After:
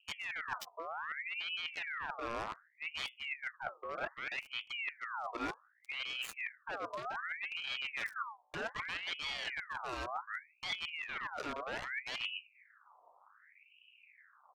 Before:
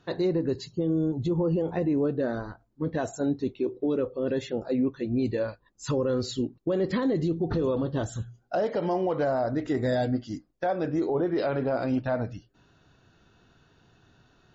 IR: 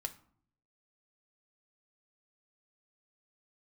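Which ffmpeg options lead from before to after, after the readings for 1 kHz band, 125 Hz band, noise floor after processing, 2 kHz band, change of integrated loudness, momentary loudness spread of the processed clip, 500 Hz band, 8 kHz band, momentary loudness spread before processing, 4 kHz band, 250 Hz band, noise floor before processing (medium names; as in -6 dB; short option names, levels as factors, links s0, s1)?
-6.0 dB, -29.0 dB, -69 dBFS, +3.5 dB, -11.5 dB, 5 LU, -21.5 dB, no reading, 6 LU, +4.0 dB, -27.0 dB, -65 dBFS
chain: -filter_complex "[0:a]lowshelf=f=130:g=-2.5,areverse,acompressor=threshold=0.0178:ratio=16,areverse,asplit=2[s0][s1];[s1]adelay=78,lowpass=f=3500:p=1,volume=0.075,asplit=2[s2][s3];[s3]adelay=78,lowpass=f=3500:p=1,volume=0.36[s4];[s0][s2][s4]amix=inputs=3:normalize=0,aeval=exprs='val(0)+0.000224*(sin(2*PI*60*n/s)+sin(2*PI*2*60*n/s)/2+sin(2*PI*3*60*n/s)/3+sin(2*PI*4*60*n/s)/4+sin(2*PI*5*60*n/s)/5)':c=same,acrossover=split=360[s5][s6];[s6]acrusher=bits=5:mix=0:aa=0.5[s7];[s5][s7]amix=inputs=2:normalize=0,asuperstop=centerf=650:order=20:qfactor=5.2,aeval=exprs='val(0)*sin(2*PI*1800*n/s+1800*0.55/0.65*sin(2*PI*0.65*n/s))':c=same,volume=1.33"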